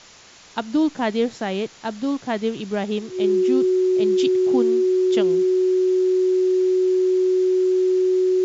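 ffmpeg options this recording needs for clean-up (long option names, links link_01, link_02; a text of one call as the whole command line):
ffmpeg -i in.wav -af "bandreject=frequency=370:width=30,afwtdn=0.0071" out.wav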